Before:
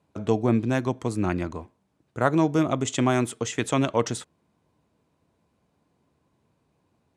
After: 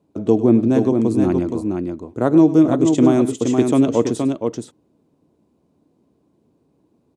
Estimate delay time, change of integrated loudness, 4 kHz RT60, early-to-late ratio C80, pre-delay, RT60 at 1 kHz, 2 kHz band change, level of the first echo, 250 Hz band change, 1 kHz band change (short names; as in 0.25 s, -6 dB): 0.101 s, +8.0 dB, none, none, none, none, -4.5 dB, -15.0 dB, +11.0 dB, +0.5 dB